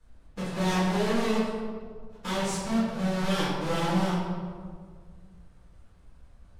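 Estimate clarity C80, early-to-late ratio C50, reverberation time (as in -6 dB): 1.5 dB, -1.0 dB, 1.8 s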